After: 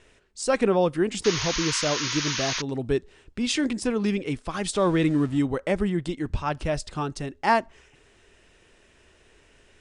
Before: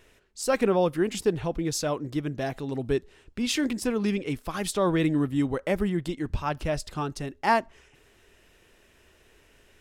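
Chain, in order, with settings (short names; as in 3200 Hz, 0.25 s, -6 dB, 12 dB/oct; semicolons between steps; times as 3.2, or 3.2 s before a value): 4.73–5.39 zero-crossing step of -40 dBFS; steep low-pass 9900 Hz 96 dB/oct; 1.24–2.62 painted sound noise 900–6800 Hz -31 dBFS; gain +1.5 dB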